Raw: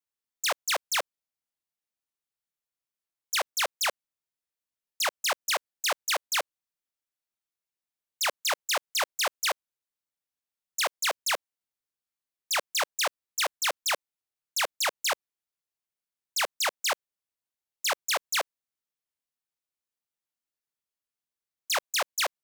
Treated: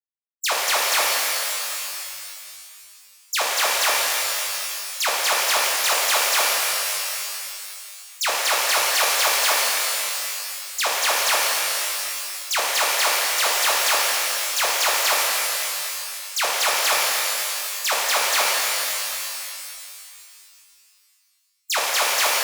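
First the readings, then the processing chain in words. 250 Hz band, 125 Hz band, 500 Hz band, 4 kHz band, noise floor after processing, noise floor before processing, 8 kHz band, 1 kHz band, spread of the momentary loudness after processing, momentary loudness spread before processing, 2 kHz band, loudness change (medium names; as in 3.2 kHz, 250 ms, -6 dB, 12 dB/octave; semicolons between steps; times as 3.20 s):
+9.0 dB, no reading, +7.5 dB, +9.5 dB, -58 dBFS, under -85 dBFS, +11.5 dB, +9.5 dB, 11 LU, 4 LU, +9.5 dB, +8.5 dB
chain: expander on every frequency bin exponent 3; pitch-shifted reverb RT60 2.5 s, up +12 st, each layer -2 dB, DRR -4.5 dB; trim +5.5 dB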